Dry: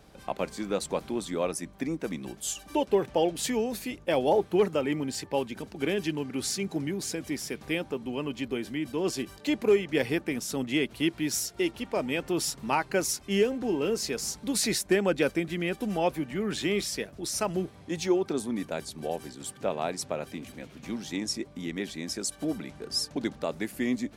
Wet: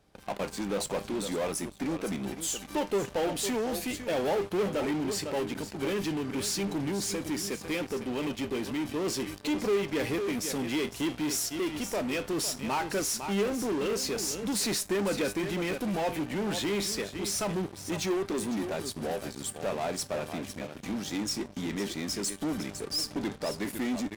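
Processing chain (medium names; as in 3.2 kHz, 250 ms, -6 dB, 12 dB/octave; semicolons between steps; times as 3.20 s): feedback comb 100 Hz, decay 0.27 s, harmonics all, mix 50%; delay 504 ms -13.5 dB; in parallel at -12 dB: fuzz box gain 41 dB, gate -50 dBFS; on the sum: trim -6.5 dB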